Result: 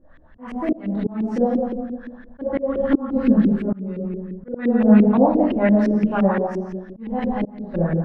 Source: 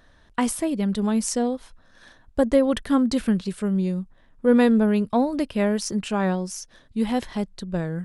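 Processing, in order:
rectangular room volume 650 cubic metres, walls mixed, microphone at 2.3 metres
volume swells 354 ms
auto-filter low-pass saw up 5.8 Hz 310–2,500 Hz
level −3 dB

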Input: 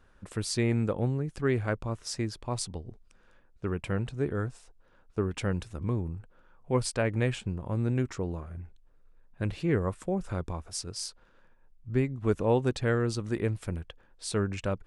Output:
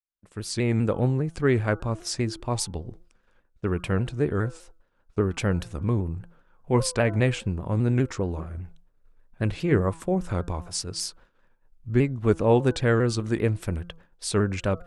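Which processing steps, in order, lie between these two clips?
fade in at the beginning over 0.93 s
hum removal 169.7 Hz, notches 9
downward expander −51 dBFS
pitch modulation by a square or saw wave saw down 5 Hz, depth 100 cents
level +5.5 dB

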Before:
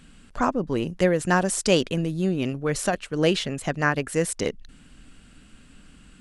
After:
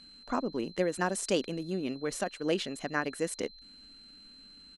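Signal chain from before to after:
steady tone 4,100 Hz −43 dBFS
tempo change 1.3×
low shelf with overshoot 180 Hz −7.5 dB, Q 1.5
level −8.5 dB

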